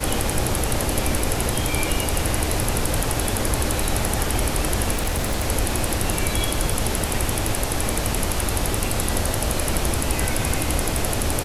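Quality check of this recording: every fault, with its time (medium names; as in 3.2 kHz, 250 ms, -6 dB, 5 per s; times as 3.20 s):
4.92–5.46 s: clipped -18 dBFS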